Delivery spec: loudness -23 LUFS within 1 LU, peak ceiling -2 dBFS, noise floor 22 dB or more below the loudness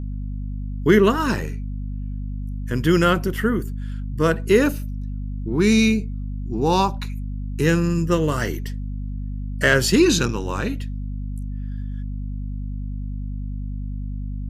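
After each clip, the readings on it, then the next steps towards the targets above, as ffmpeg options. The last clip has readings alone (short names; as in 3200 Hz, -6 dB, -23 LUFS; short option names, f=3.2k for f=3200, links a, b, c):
hum 50 Hz; harmonics up to 250 Hz; hum level -25 dBFS; loudness -22.5 LUFS; peak -2.5 dBFS; loudness target -23.0 LUFS
-> -af "bandreject=f=50:t=h:w=6,bandreject=f=100:t=h:w=6,bandreject=f=150:t=h:w=6,bandreject=f=200:t=h:w=6,bandreject=f=250:t=h:w=6"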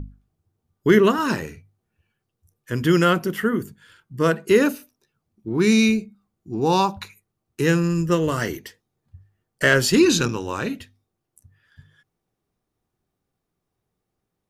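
hum none; loudness -20.5 LUFS; peak -2.5 dBFS; loudness target -23.0 LUFS
-> -af "volume=-2.5dB"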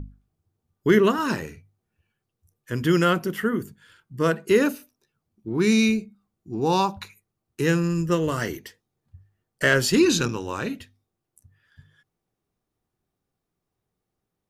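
loudness -23.0 LUFS; peak -5.0 dBFS; noise floor -82 dBFS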